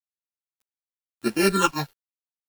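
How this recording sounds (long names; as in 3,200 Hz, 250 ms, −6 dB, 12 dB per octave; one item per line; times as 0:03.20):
a buzz of ramps at a fixed pitch in blocks of 32 samples
phaser sweep stages 8, 0.91 Hz, lowest notch 330–1,100 Hz
a quantiser's noise floor 8 bits, dither none
a shimmering, thickened sound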